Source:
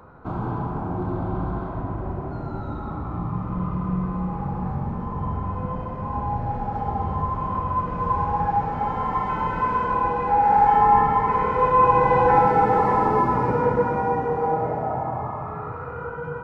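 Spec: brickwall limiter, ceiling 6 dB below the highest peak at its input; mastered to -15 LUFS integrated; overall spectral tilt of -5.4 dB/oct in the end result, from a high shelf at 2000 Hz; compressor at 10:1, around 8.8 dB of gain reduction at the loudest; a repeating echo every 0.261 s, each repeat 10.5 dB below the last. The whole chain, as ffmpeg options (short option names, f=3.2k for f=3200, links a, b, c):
-af "highshelf=f=2k:g=-6,acompressor=threshold=-22dB:ratio=10,alimiter=limit=-20.5dB:level=0:latency=1,aecho=1:1:261|522|783:0.299|0.0896|0.0269,volume=14.5dB"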